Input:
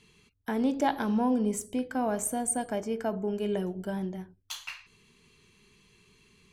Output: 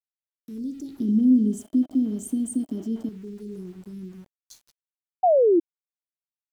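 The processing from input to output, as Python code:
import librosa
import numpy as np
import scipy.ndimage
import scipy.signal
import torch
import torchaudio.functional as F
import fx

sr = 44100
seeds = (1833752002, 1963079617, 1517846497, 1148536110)

y = scipy.signal.sosfilt(scipy.signal.cheby2(4, 40, [630.0, 2700.0], 'bandstop', fs=sr, output='sos'), x)
y = fx.high_shelf(y, sr, hz=6400.0, db=-4.0)
y = np.where(np.abs(y) >= 10.0 ** (-47.0 / 20.0), y, 0.0)
y = fx.small_body(y, sr, hz=(290.0, 620.0, 3100.0), ring_ms=25, db=17, at=(1.0, 3.09))
y = fx.spec_paint(y, sr, seeds[0], shape='fall', start_s=5.23, length_s=0.37, low_hz=320.0, high_hz=770.0, level_db=-13.0)
y = y * 10.0 ** (-4.0 / 20.0)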